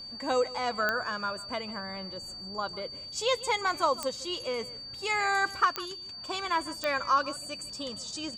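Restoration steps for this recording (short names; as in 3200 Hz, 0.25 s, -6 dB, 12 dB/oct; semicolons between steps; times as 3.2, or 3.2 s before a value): de-click; notch 4600 Hz, Q 30; inverse comb 0.15 s -18.5 dB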